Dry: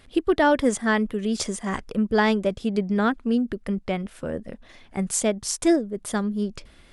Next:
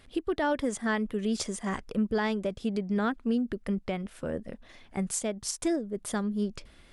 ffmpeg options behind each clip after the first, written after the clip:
-af "alimiter=limit=-16dB:level=0:latency=1:release=218,volume=-3.5dB"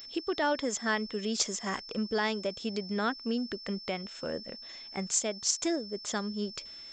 -af "aeval=exprs='val(0)+0.00316*sin(2*PI*5300*n/s)':c=same,aresample=16000,aresample=44100,aemphasis=mode=production:type=bsi"

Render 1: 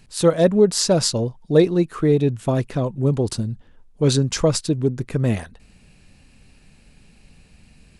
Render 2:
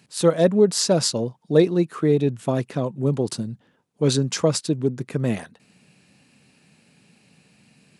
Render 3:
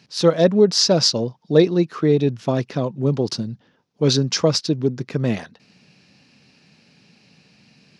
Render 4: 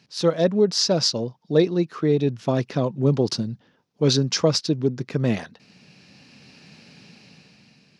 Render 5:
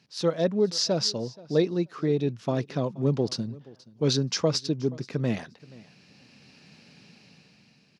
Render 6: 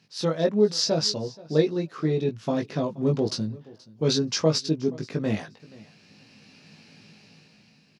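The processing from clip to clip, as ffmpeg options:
-af "highpass=f=130:w=0.5412,highpass=f=130:w=1.3066,volume=-1.5dB"
-af "highshelf=f=6.9k:t=q:w=3:g=-9,volume=2dB"
-af "dynaudnorm=f=270:g=7:m=11dB,volume=-4.5dB"
-af "aecho=1:1:477|954:0.0794|0.0127,volume=-5dB"
-filter_complex "[0:a]asplit=2[a][b];[b]adelay=19,volume=-3.5dB[c];[a][c]amix=inputs=2:normalize=0"

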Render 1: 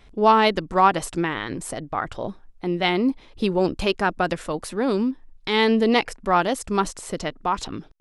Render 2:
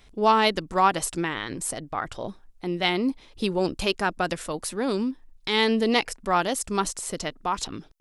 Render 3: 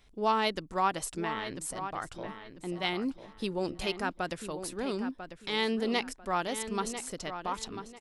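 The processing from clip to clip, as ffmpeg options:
-af "highshelf=f=4.1k:g=10.5,volume=-4dB"
-filter_complex "[0:a]asplit=2[a][b];[b]adelay=995,lowpass=f=3.5k:p=1,volume=-9.5dB,asplit=2[c][d];[d]adelay=995,lowpass=f=3.5k:p=1,volume=0.28,asplit=2[e][f];[f]adelay=995,lowpass=f=3.5k:p=1,volume=0.28[g];[a][c][e][g]amix=inputs=4:normalize=0,volume=-8dB"

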